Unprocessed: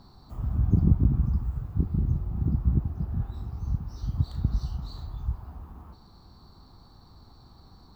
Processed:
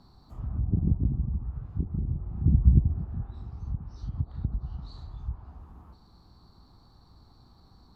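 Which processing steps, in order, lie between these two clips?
low-pass that closes with the level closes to 710 Hz, closed at -20.5 dBFS; hum 60 Hz, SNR 31 dB; 2.43–3.00 s: bass shelf 290 Hz +10.5 dB; trim -4.5 dB

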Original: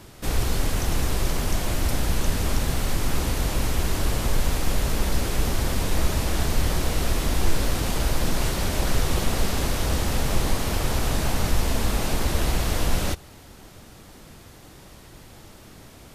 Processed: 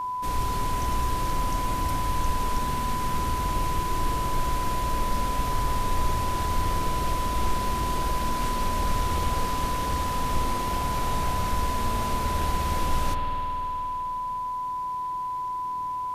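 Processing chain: spring tank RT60 3.5 s, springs 52 ms, chirp 25 ms, DRR 2 dB; whistle 1 kHz -21 dBFS; trim -6.5 dB

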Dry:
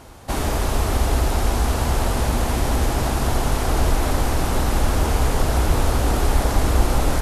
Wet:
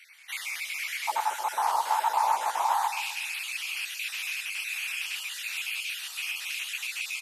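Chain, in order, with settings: random holes in the spectrogram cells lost 34%; ladder high-pass 2.1 kHz, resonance 80%, from 1.07 s 850 Hz, from 2.87 s 2.4 kHz; feedback delay 129 ms, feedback 38%, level -9 dB; trim +6 dB

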